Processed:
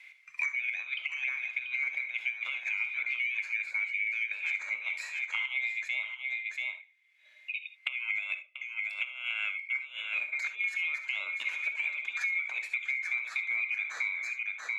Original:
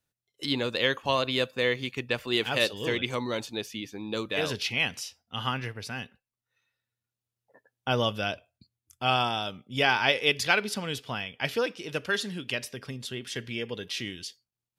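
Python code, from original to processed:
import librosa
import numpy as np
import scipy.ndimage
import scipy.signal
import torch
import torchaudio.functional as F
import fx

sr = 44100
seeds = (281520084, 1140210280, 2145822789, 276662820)

y = fx.band_swap(x, sr, width_hz=2000)
y = fx.over_compress(y, sr, threshold_db=-33.0, ratio=-0.5)
y = 10.0 ** (-16.5 / 20.0) * np.tanh(y / 10.0 ** (-16.5 / 20.0))
y = fx.bandpass_q(y, sr, hz=2300.0, q=5.7)
y = y + 10.0 ** (-10.0 / 20.0) * np.pad(y, (int(686 * sr / 1000.0), 0))[:len(y)]
y = fx.rev_gated(y, sr, seeds[0], gate_ms=90, shape='rising', drr_db=10.0)
y = fx.band_squash(y, sr, depth_pct=100)
y = y * librosa.db_to_amplitude(3.0)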